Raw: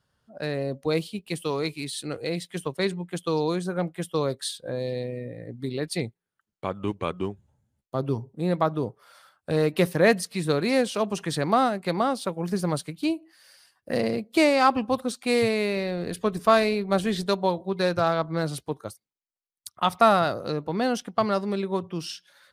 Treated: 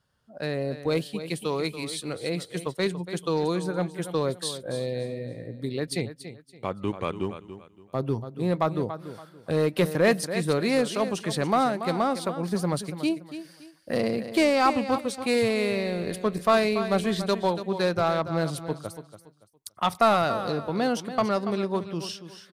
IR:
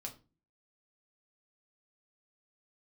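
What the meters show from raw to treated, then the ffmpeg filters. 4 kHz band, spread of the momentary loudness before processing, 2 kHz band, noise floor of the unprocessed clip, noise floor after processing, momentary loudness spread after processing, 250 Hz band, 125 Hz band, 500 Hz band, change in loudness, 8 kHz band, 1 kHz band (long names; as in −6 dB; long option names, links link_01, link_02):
−0.5 dB, 13 LU, −1.0 dB, below −85 dBFS, −57 dBFS, 13 LU, −0.5 dB, −0.5 dB, −0.5 dB, −1.0 dB, 0.0 dB, −1.5 dB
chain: -filter_complex "[0:a]aecho=1:1:284|568|852:0.251|0.0703|0.0197,asplit=2[link_01][link_02];[link_02]aeval=exprs='0.126*(abs(mod(val(0)/0.126+3,4)-2)-1)':channel_layout=same,volume=-11dB[link_03];[link_01][link_03]amix=inputs=2:normalize=0,volume=-2.5dB"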